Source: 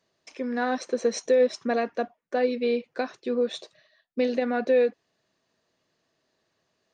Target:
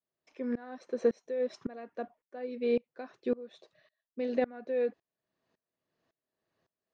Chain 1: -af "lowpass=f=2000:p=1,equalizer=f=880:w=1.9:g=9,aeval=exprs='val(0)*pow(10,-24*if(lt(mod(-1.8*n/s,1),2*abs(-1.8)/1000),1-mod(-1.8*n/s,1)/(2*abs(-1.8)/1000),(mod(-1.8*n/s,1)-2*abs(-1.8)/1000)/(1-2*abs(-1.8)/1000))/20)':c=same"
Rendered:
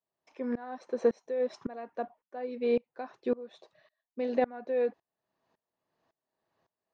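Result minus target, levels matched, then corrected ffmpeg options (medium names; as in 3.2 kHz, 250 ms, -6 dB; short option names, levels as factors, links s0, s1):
1 kHz band +4.5 dB
-af "lowpass=f=2000:p=1,aeval=exprs='val(0)*pow(10,-24*if(lt(mod(-1.8*n/s,1),2*abs(-1.8)/1000),1-mod(-1.8*n/s,1)/(2*abs(-1.8)/1000),(mod(-1.8*n/s,1)-2*abs(-1.8)/1000)/(1-2*abs(-1.8)/1000))/20)':c=same"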